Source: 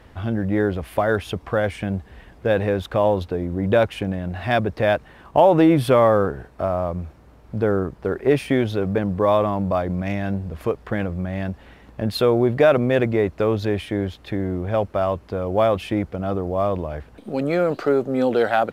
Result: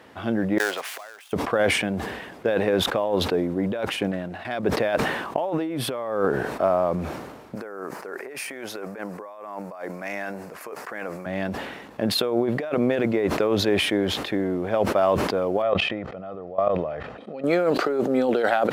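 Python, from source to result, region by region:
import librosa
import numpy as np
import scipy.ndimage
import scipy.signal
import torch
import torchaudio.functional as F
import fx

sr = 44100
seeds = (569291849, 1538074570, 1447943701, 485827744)

y = fx.chain(x, sr, fx.dead_time(dead_ms=0.1),
    fx.gate_flip(shuts_db=-22.0, range_db=-30),
    fx.highpass(hz=960.0, slope=12), at=(0.58, 1.33))
y = fx.chain(y, sr, fx.level_steps(step_db=15),
    fx.doppler_dist(depth_ms=0.14), at=(4.11, 4.63))
y = fx.chain(y, sr, fx.highpass(hz=1500.0, slope=6),
    fx.peak_eq(hz=3400.0, db=-13.5, octaves=0.68),
    fx.over_compress(threshold_db=-37.0, ratio=-1.0), at=(7.55, 11.26))
y = fx.chain(y, sr, fx.lowpass(hz=3200.0, slope=12),
    fx.comb(ms=1.6, depth=0.42),
    fx.level_steps(step_db=18), at=(15.62, 17.44))
y = fx.over_compress(y, sr, threshold_db=-20.0, ratio=-0.5)
y = scipy.signal.sosfilt(scipy.signal.butter(2, 230.0, 'highpass', fs=sr, output='sos'), y)
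y = fx.sustainer(y, sr, db_per_s=43.0)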